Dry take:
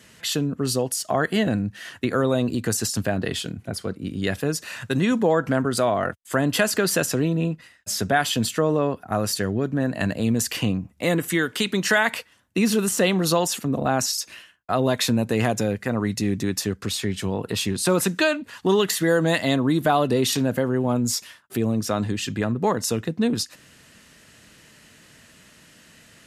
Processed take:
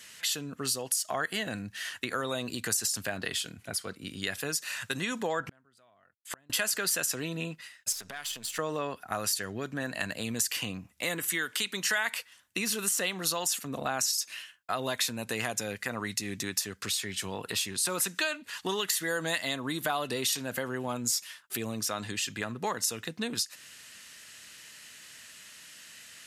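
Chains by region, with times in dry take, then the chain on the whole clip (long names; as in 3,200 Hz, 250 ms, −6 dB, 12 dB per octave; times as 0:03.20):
0:05.40–0:06.50: bass and treble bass +6 dB, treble −7 dB + gate with flip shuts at −16 dBFS, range −36 dB
0:07.92–0:08.59: gain on one half-wave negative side −7 dB + downward compressor 10 to 1, threshold −31 dBFS
whole clip: tilt shelving filter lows −9.5 dB, about 910 Hz; downward compressor 2 to 1, threshold −25 dBFS; dynamic equaliser 3,500 Hz, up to −3 dB, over −32 dBFS, Q 0.78; level −4.5 dB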